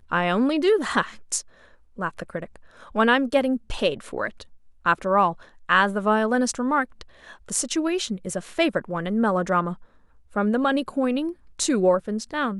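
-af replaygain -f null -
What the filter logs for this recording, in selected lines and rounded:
track_gain = +3.1 dB
track_peak = 0.391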